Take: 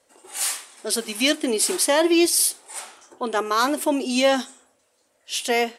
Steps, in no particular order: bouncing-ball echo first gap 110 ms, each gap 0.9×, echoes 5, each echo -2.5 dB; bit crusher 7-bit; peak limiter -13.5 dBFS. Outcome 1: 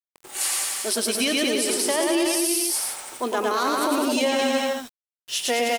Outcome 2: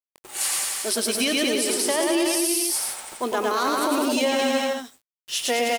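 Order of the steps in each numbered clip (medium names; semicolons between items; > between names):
bouncing-ball echo > bit crusher > peak limiter; bit crusher > bouncing-ball echo > peak limiter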